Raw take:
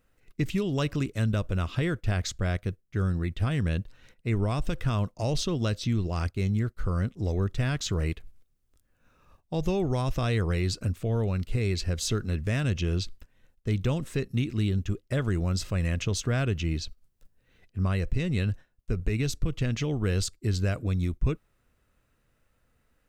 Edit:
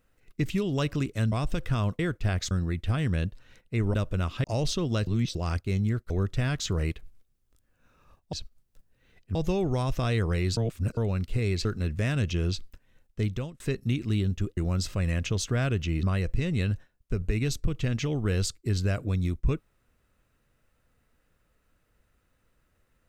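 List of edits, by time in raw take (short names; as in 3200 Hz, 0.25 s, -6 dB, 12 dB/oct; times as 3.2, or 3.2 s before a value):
1.32–1.82 swap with 4.47–5.14
2.34–3.04 cut
5.77–6.05 reverse
6.8–7.31 cut
10.76–11.16 reverse
11.84–12.13 cut
13.69–14.08 fade out
15.05–15.33 cut
16.79–17.81 move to 9.54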